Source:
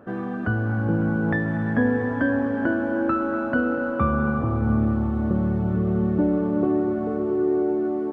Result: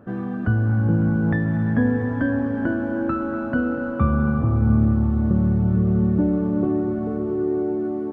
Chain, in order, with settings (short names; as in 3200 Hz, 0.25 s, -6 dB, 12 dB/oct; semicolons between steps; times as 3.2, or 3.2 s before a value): tone controls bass +9 dB, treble +1 dB; gain -3 dB